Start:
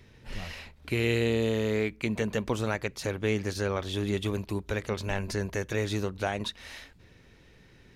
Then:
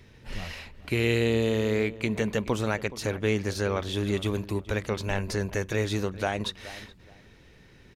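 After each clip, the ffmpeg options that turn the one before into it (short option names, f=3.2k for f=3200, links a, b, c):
-filter_complex "[0:a]asplit=2[a][b];[b]adelay=423,lowpass=f=1.8k:p=1,volume=-16dB,asplit=2[c][d];[d]adelay=423,lowpass=f=1.8k:p=1,volume=0.24[e];[a][c][e]amix=inputs=3:normalize=0,volume=2dB"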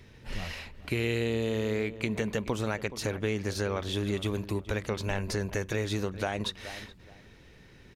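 -af "acompressor=threshold=-27dB:ratio=3"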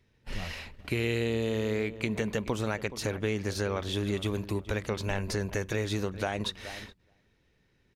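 -af "agate=range=-15dB:threshold=-46dB:ratio=16:detection=peak"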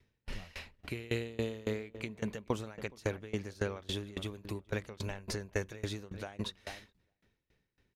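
-af "aeval=exprs='val(0)*pow(10,-24*if(lt(mod(3.6*n/s,1),2*abs(3.6)/1000),1-mod(3.6*n/s,1)/(2*abs(3.6)/1000),(mod(3.6*n/s,1)-2*abs(3.6)/1000)/(1-2*abs(3.6)/1000))/20)':c=same"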